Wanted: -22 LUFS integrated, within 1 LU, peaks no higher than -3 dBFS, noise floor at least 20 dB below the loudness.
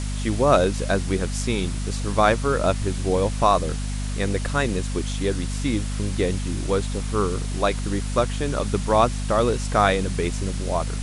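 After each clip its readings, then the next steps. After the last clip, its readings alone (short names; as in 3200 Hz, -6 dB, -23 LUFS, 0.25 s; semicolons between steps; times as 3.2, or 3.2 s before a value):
hum 50 Hz; harmonics up to 250 Hz; hum level -24 dBFS; noise floor -27 dBFS; noise floor target -44 dBFS; loudness -23.5 LUFS; peak -3.5 dBFS; loudness target -22.0 LUFS
-> notches 50/100/150/200/250 Hz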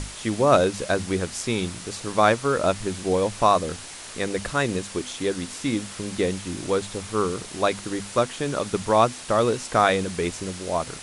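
hum none; noise floor -39 dBFS; noise floor target -45 dBFS
-> noise print and reduce 6 dB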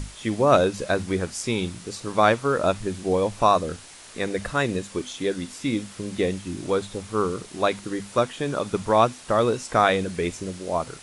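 noise floor -45 dBFS; loudness -24.5 LUFS; peak -4.5 dBFS; loudness target -22.0 LUFS
-> gain +2.5 dB; limiter -3 dBFS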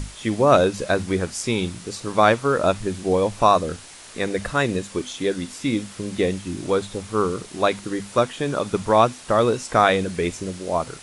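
loudness -22.0 LUFS; peak -3.0 dBFS; noise floor -42 dBFS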